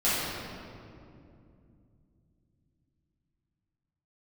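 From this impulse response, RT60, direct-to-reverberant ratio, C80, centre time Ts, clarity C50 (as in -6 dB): 2.6 s, -12.0 dB, -1.0 dB, 153 ms, -3.5 dB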